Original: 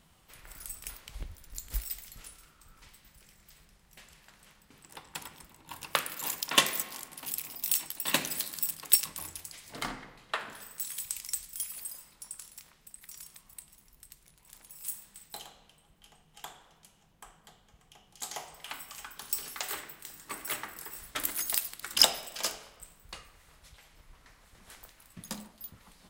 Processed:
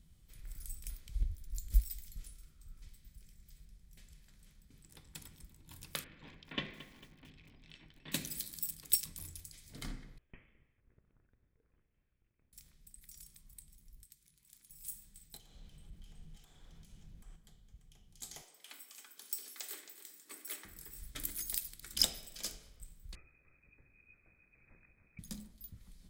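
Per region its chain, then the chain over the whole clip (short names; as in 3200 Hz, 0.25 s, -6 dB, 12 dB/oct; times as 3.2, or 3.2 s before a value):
6.04–8.12 LPF 2900 Hz 24 dB/oct + notch 1300 Hz, Q 13 + lo-fi delay 0.224 s, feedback 55%, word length 7-bit, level -15 dB
10.18–12.53 differentiator + compressor 2:1, threshold -40 dBFS + inverted band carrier 3700 Hz
14.04–14.7 bell 630 Hz -13.5 dB 0.84 oct + upward compressor, threshold -55 dBFS + HPF 380 Hz 6 dB/oct
15.37–17.36 compressor, threshold -58 dBFS + high shelf 8400 Hz -9.5 dB + sample leveller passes 3
18.41–20.65 HPF 300 Hz 24 dB/oct + echo 0.27 s -12.5 dB
23.15–25.19 echo 0.297 s -10 dB + inverted band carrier 2500 Hz
whole clip: passive tone stack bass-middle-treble 10-0-1; notch 2800 Hz, Q 11; gain +13 dB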